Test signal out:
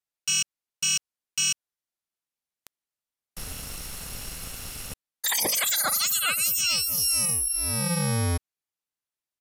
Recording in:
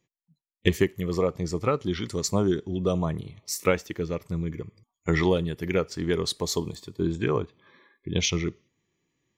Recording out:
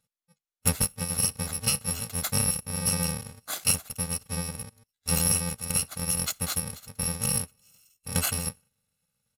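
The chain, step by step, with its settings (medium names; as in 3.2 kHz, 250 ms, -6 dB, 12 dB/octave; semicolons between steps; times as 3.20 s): bit-reversed sample order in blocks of 128 samples; resampled via 32 kHz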